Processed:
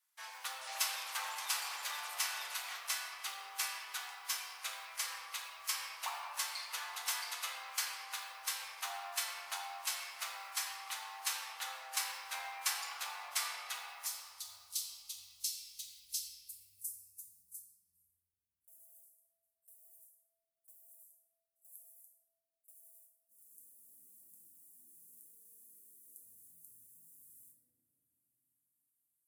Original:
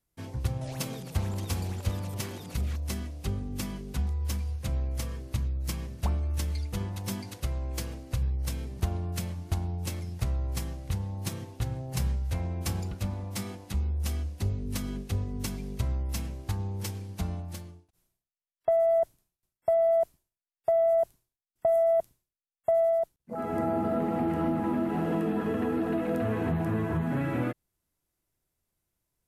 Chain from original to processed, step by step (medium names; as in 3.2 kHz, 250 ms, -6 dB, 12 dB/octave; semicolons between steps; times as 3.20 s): block-companded coder 7-bit; inverse Chebyshev high-pass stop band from 290 Hz, stop band 60 dB, from 14.05 s stop band from 1.2 kHz, from 16.18 s stop band from 2.9 kHz; reverberation RT60 2.9 s, pre-delay 6 ms, DRR -3.5 dB; trim +1 dB